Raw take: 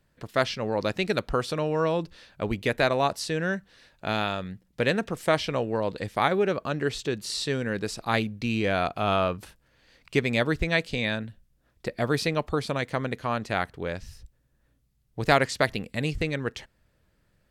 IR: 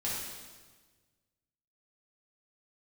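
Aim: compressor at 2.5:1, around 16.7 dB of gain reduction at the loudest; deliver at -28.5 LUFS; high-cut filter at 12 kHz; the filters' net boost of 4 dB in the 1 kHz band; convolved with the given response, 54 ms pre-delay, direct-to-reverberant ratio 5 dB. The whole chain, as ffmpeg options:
-filter_complex "[0:a]lowpass=12000,equalizer=f=1000:t=o:g=5.5,acompressor=threshold=0.01:ratio=2.5,asplit=2[s0][s1];[1:a]atrim=start_sample=2205,adelay=54[s2];[s1][s2]afir=irnorm=-1:irlink=0,volume=0.316[s3];[s0][s3]amix=inputs=2:normalize=0,volume=2.82"

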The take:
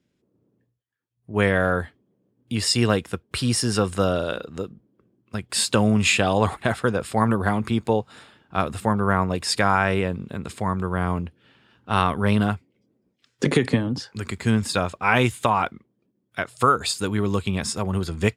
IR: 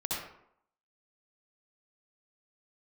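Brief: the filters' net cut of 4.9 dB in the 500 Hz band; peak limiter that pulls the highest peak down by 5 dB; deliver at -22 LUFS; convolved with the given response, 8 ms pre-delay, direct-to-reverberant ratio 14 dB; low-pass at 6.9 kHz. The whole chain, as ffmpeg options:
-filter_complex "[0:a]lowpass=6900,equalizer=f=500:t=o:g=-6,alimiter=limit=0.299:level=0:latency=1,asplit=2[s0][s1];[1:a]atrim=start_sample=2205,adelay=8[s2];[s1][s2]afir=irnorm=-1:irlink=0,volume=0.112[s3];[s0][s3]amix=inputs=2:normalize=0,volume=1.5"

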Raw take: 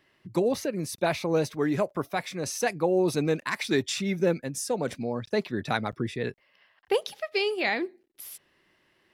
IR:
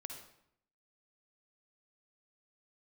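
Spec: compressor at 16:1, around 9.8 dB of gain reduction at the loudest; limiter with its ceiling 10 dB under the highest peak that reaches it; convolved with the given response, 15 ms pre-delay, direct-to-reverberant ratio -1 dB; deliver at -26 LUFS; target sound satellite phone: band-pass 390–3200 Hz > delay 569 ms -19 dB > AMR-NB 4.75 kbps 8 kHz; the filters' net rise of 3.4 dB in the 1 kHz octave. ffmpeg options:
-filter_complex "[0:a]equalizer=f=1000:t=o:g=5,acompressor=threshold=0.0398:ratio=16,alimiter=level_in=1.06:limit=0.0631:level=0:latency=1,volume=0.944,asplit=2[s0][s1];[1:a]atrim=start_sample=2205,adelay=15[s2];[s1][s2]afir=irnorm=-1:irlink=0,volume=1.68[s3];[s0][s3]amix=inputs=2:normalize=0,highpass=390,lowpass=3200,aecho=1:1:569:0.112,volume=3.98" -ar 8000 -c:a libopencore_amrnb -b:a 4750

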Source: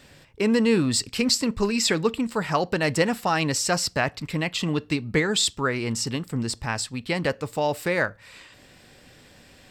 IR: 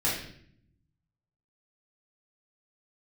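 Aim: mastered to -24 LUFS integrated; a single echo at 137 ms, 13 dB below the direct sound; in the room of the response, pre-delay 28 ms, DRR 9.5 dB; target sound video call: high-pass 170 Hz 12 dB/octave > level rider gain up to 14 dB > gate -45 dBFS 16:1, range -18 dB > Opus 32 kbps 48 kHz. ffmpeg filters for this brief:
-filter_complex "[0:a]aecho=1:1:137:0.224,asplit=2[s0][s1];[1:a]atrim=start_sample=2205,adelay=28[s2];[s1][s2]afir=irnorm=-1:irlink=0,volume=0.106[s3];[s0][s3]amix=inputs=2:normalize=0,highpass=170,dynaudnorm=m=5.01,agate=range=0.126:threshold=0.00562:ratio=16,volume=1.06" -ar 48000 -c:a libopus -b:a 32k

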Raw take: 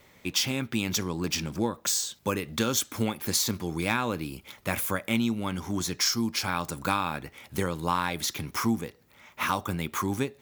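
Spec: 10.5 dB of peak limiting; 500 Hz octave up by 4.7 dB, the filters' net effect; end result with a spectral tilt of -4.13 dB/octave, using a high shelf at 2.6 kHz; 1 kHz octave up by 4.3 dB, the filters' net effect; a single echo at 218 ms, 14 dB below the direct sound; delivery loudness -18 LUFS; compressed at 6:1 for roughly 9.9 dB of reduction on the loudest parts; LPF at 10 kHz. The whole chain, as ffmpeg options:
-af "lowpass=10000,equalizer=f=500:t=o:g=5,equalizer=f=1000:t=o:g=5,highshelf=f=2600:g=-7,acompressor=threshold=0.0355:ratio=6,alimiter=level_in=1.19:limit=0.0631:level=0:latency=1,volume=0.841,aecho=1:1:218:0.2,volume=8.91"

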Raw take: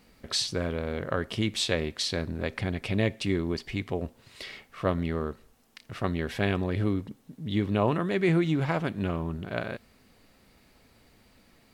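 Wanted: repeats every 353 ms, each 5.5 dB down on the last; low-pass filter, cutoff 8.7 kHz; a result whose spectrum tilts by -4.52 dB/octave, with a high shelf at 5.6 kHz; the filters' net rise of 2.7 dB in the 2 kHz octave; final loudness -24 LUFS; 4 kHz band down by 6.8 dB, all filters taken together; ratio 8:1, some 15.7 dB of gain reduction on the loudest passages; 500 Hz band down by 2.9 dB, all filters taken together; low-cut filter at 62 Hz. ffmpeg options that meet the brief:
-af "highpass=62,lowpass=8700,equalizer=f=500:t=o:g=-4,equalizer=f=2000:t=o:g=6,equalizer=f=4000:t=o:g=-8,highshelf=f=5600:g=-5,acompressor=threshold=0.0126:ratio=8,aecho=1:1:353|706|1059|1412|1765|2118|2471:0.531|0.281|0.149|0.079|0.0419|0.0222|0.0118,volume=7.94"

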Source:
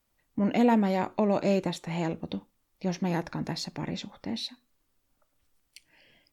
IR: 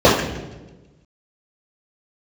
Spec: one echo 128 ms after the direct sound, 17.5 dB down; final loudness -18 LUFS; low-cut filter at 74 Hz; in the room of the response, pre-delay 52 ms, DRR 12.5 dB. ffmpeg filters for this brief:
-filter_complex "[0:a]highpass=74,aecho=1:1:128:0.133,asplit=2[s0][s1];[1:a]atrim=start_sample=2205,adelay=52[s2];[s1][s2]afir=irnorm=-1:irlink=0,volume=0.00794[s3];[s0][s3]amix=inputs=2:normalize=0,volume=3.35"

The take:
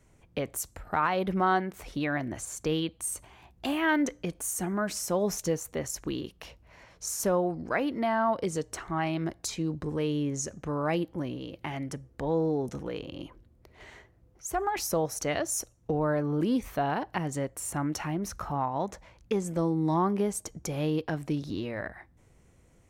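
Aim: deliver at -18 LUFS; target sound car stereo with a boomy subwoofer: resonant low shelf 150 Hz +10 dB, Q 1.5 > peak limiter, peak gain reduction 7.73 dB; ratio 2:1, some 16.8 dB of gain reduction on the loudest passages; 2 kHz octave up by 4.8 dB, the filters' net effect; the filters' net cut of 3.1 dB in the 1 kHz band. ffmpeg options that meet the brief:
-af "equalizer=f=1000:t=o:g=-6,equalizer=f=2000:t=o:g=8.5,acompressor=threshold=0.00224:ratio=2,lowshelf=f=150:t=q:w=1.5:g=10,volume=25.1,alimiter=limit=0.398:level=0:latency=1"

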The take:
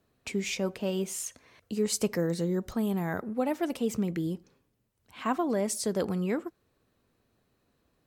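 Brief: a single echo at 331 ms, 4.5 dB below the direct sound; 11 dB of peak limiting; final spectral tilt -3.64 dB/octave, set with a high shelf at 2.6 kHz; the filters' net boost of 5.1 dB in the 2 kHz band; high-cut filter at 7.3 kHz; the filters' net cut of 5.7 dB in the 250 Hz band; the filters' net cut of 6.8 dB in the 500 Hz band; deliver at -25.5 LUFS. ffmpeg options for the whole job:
-af "lowpass=7300,equalizer=f=250:t=o:g=-6.5,equalizer=f=500:t=o:g=-7,equalizer=f=2000:t=o:g=4,highshelf=f=2600:g=6,alimiter=level_in=1.26:limit=0.0631:level=0:latency=1,volume=0.794,aecho=1:1:331:0.596,volume=3.16"

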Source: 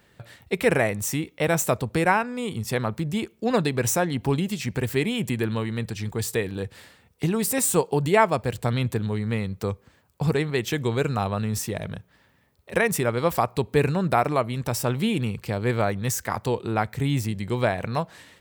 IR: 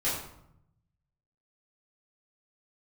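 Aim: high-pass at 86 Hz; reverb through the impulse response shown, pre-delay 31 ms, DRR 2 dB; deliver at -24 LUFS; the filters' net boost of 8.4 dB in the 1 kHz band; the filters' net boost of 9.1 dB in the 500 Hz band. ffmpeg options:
-filter_complex "[0:a]highpass=86,equalizer=f=500:t=o:g=9,equalizer=f=1000:t=o:g=7.5,asplit=2[s0][s1];[1:a]atrim=start_sample=2205,adelay=31[s2];[s1][s2]afir=irnorm=-1:irlink=0,volume=0.299[s3];[s0][s3]amix=inputs=2:normalize=0,volume=0.422"

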